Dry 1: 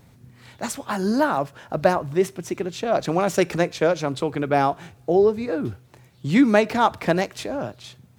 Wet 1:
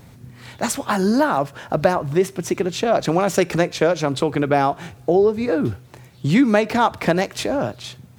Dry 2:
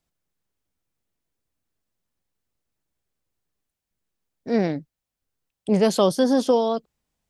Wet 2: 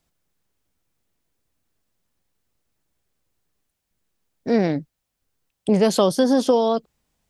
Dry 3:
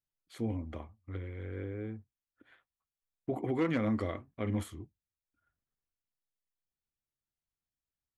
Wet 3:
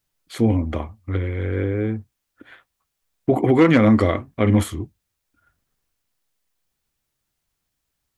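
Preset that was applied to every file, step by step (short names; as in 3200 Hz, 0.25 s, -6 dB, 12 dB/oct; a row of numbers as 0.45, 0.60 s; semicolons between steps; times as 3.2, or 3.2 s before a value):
compressor 2:1, threshold -24 dBFS; match loudness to -20 LUFS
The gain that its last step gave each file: +7.5, +6.5, +16.5 dB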